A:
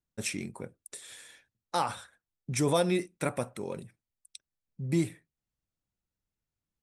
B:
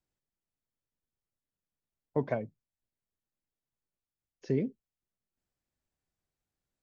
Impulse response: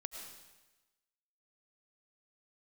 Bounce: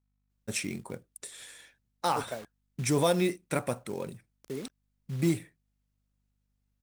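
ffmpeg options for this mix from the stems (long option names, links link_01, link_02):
-filter_complex "[0:a]acontrast=49,adelay=300,volume=-5dB[link_01];[1:a]bass=frequency=250:gain=-7,treble=frequency=4000:gain=5,acrusher=bits=6:mix=0:aa=0.000001,aeval=exprs='val(0)+0.000282*(sin(2*PI*50*n/s)+sin(2*PI*2*50*n/s)/2+sin(2*PI*3*50*n/s)/3+sin(2*PI*4*50*n/s)/4+sin(2*PI*5*50*n/s)/5)':channel_layout=same,volume=-5.5dB[link_02];[link_01][link_02]amix=inputs=2:normalize=0,acrusher=bits=5:mode=log:mix=0:aa=0.000001"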